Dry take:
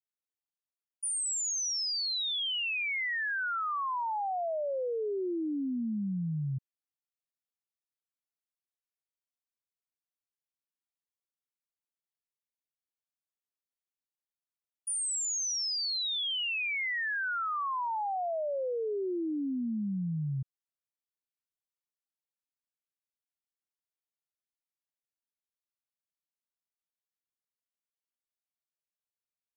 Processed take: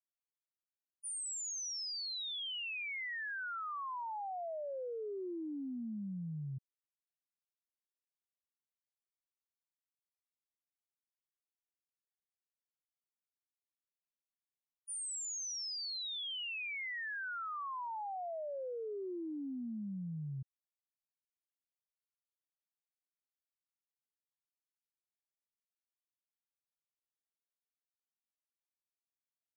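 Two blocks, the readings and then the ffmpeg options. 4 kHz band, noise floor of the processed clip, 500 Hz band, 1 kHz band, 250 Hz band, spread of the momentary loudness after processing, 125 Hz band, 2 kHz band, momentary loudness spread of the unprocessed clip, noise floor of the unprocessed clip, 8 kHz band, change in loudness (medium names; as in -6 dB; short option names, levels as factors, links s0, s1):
-8.5 dB, under -85 dBFS, -8.5 dB, -8.5 dB, -8.5 dB, 4 LU, -8.5 dB, -8.5 dB, 4 LU, under -85 dBFS, -8.5 dB, -8.5 dB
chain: -af "agate=range=0.0224:threshold=0.0562:ratio=3:detection=peak,volume=1.33"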